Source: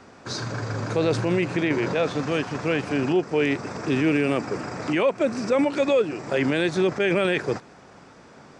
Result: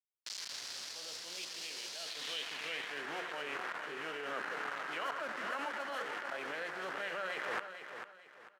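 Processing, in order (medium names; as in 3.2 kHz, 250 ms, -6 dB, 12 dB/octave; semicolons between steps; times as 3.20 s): median filter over 9 samples; hum notches 60/120/180/240/300/360/420/480 Hz; bit crusher 5-bit; high-pass 190 Hz 12 dB/octave; tone controls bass +7 dB, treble +10 dB; formant shift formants +3 st; reverse; compression 12:1, threshold -34 dBFS, peak gain reduction 19.5 dB; reverse; treble shelf 5 kHz -9.5 dB; speakerphone echo 90 ms, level -12 dB; band-pass sweep 4.8 kHz -> 1.5 kHz, 1.97–3.14 s; on a send: feedback delay 446 ms, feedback 32%, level -9 dB; on the sum: swell ahead of each attack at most 29 dB/s; trim +9.5 dB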